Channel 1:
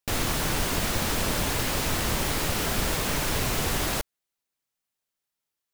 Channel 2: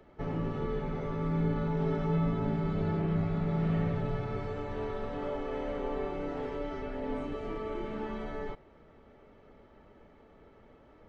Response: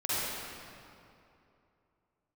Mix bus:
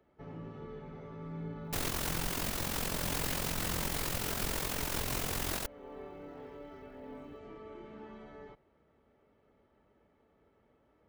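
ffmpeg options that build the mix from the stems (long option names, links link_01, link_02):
-filter_complex "[0:a]highshelf=frequency=11000:gain=5.5,tremolo=f=44:d=0.71,adelay=1650,volume=0.5dB[link_01];[1:a]highpass=48,volume=-11.5dB[link_02];[link_01][link_02]amix=inputs=2:normalize=0,alimiter=limit=-22.5dB:level=0:latency=1:release=329"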